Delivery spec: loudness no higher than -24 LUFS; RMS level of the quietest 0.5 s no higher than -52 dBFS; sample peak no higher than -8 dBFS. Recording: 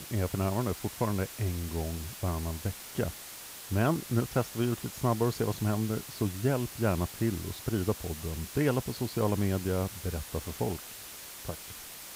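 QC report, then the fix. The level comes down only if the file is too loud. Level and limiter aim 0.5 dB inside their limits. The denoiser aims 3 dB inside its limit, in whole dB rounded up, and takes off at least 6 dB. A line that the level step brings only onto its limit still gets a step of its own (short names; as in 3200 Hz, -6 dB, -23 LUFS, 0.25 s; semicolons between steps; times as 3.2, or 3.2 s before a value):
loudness -32.5 LUFS: OK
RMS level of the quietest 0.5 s -45 dBFS: fail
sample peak -13.5 dBFS: OK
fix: denoiser 10 dB, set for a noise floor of -45 dBFS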